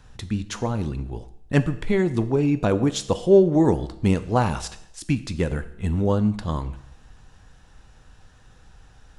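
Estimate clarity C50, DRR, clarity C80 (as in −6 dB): 15.0 dB, 11.0 dB, 17.0 dB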